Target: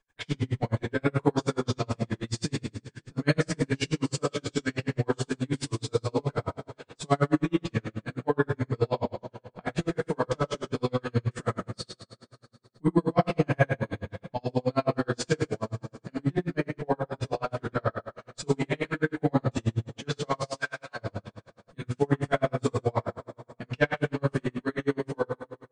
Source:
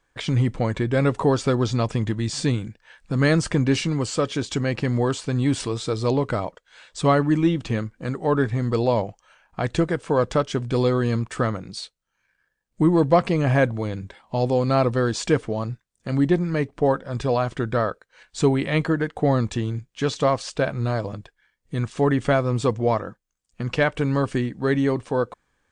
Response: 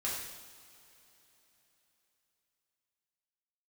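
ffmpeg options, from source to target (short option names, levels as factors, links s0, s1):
-filter_complex "[0:a]asplit=3[s0][s1][s2];[s0]afade=t=out:st=20.48:d=0.02[s3];[s1]highpass=f=920:w=0.5412,highpass=f=920:w=1.3066,afade=t=in:st=20.48:d=0.02,afade=t=out:st=20.95:d=0.02[s4];[s2]afade=t=in:st=20.95:d=0.02[s5];[s3][s4][s5]amix=inputs=3:normalize=0[s6];[1:a]atrim=start_sample=2205,asetrate=57330,aresample=44100[s7];[s6][s7]afir=irnorm=-1:irlink=0,aeval=exprs='val(0)*pow(10,-40*(0.5-0.5*cos(2*PI*9.4*n/s))/20)':c=same"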